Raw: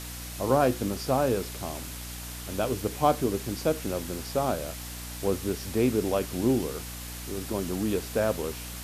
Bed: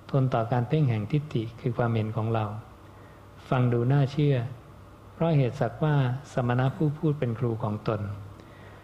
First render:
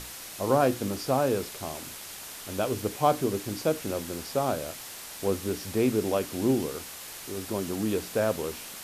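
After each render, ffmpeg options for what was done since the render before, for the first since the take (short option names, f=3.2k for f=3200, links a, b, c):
-af "bandreject=f=60:t=h:w=6,bandreject=f=120:t=h:w=6,bandreject=f=180:t=h:w=6,bandreject=f=240:t=h:w=6,bandreject=f=300:t=h:w=6"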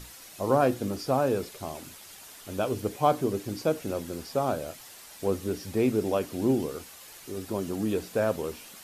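-af "afftdn=nr=8:nf=-42"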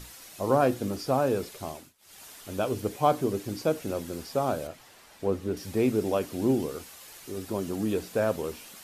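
-filter_complex "[0:a]asettb=1/sr,asplit=3[a][b][c];[a]atrim=end=4.674[d];[b]atrim=start=4.67:end=5.57,asetpts=PTS-STARTPTS,afade=t=in:d=0.004:c=qsin,afade=t=out:st=0.896:d=0.004:c=qsin,highshelf=f=4.2k:g=-12[e];[c]atrim=start=5.566[f];[d][e]acrossfade=d=0.004:c1=hsin:c2=qsin[g];[g][f]acrossfade=d=0.004:c1=qsin:c2=hsin,asplit=3[h][i][j];[h]atrim=end=1.93,asetpts=PTS-STARTPTS,afade=t=out:st=1.69:d=0.24:silence=0.0707946[k];[i]atrim=start=1.93:end=1.98,asetpts=PTS-STARTPTS,volume=-23dB[l];[j]atrim=start=1.98,asetpts=PTS-STARTPTS,afade=t=in:d=0.24:silence=0.0707946[m];[k][l][m]concat=n=3:v=0:a=1"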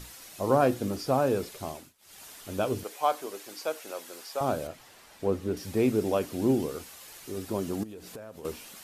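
-filter_complex "[0:a]asettb=1/sr,asplit=3[a][b][c];[a]atrim=end=2.834[d];[b]atrim=start=2.83:end=4.41,asetpts=PTS-STARTPTS,afade=t=in:d=0.004:c=qsin,afade=t=out:st=1.576:d=0.004:c=qsin,highpass=690[e];[c]atrim=start=4.406[f];[d][e]acrossfade=d=0.004:c1=hsin:c2=qsin[g];[g][f]acrossfade=d=0.004:c1=qsin:c2=hsin,asettb=1/sr,asplit=3[h][i][j];[h]atrim=end=7.834[k];[i]atrim=start=7.83:end=8.45,asetpts=PTS-STARTPTS,afade=t=in:d=0.004:c=qsin,afade=t=out:st=0.616:d=0.004:c=qsin,acompressor=threshold=-39dB:ratio=12:attack=3.2:release=140:knee=1:detection=peak[l];[j]atrim=start=8.446[m];[k][l]acrossfade=d=0.004:c1=hsin:c2=qsin[n];[n][m]acrossfade=d=0.004:c1=qsin:c2=hsin"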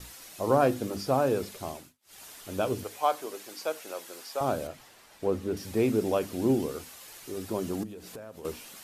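-af "bandreject=f=50:t=h:w=6,bandreject=f=100:t=h:w=6,bandreject=f=150:t=h:w=6,bandreject=f=200:t=h:w=6,bandreject=f=250:t=h:w=6,agate=range=-33dB:threshold=-51dB:ratio=3:detection=peak"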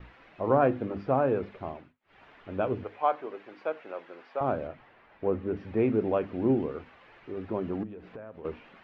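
-af "lowpass=f=2.4k:w=0.5412,lowpass=f=2.4k:w=1.3066"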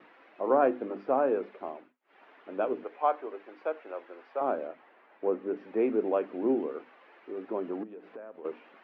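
-af "highpass=f=270:w=0.5412,highpass=f=270:w=1.3066,highshelf=f=3.3k:g=-10"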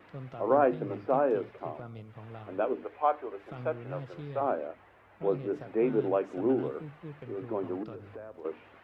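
-filter_complex "[1:a]volume=-18.5dB[a];[0:a][a]amix=inputs=2:normalize=0"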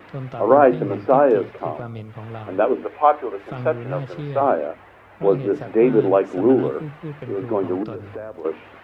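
-af "volume=11.5dB,alimiter=limit=-2dB:level=0:latency=1"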